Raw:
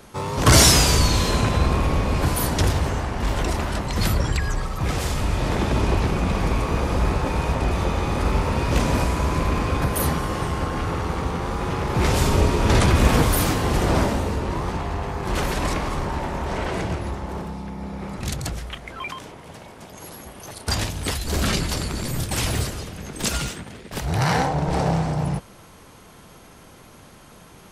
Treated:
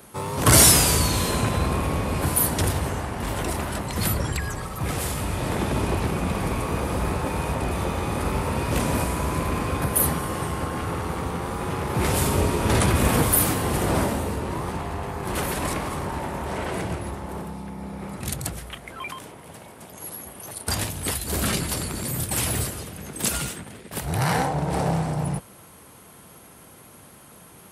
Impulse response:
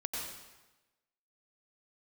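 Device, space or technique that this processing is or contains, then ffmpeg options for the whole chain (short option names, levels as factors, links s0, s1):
budget condenser microphone: -af "highpass=71,highshelf=f=7800:t=q:w=1.5:g=7.5,volume=0.794"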